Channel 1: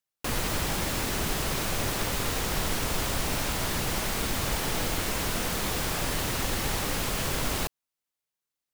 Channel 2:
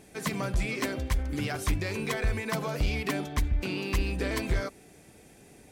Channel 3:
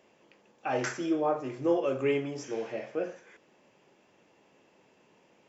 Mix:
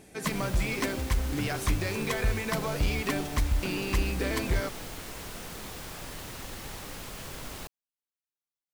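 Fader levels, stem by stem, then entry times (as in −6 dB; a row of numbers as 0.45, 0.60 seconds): −11.5 dB, +0.5 dB, muted; 0.00 s, 0.00 s, muted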